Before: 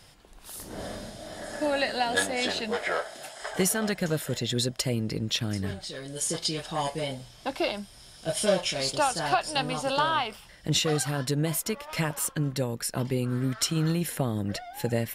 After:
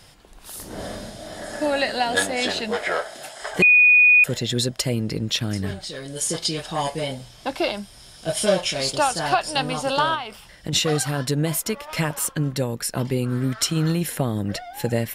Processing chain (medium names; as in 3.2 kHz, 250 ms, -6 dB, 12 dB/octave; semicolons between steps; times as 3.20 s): 3.62–4.24 s: bleep 2.47 kHz -14.5 dBFS; 10.14–10.73 s: compression 6:1, threshold -30 dBFS, peak gain reduction 8.5 dB; trim +4.5 dB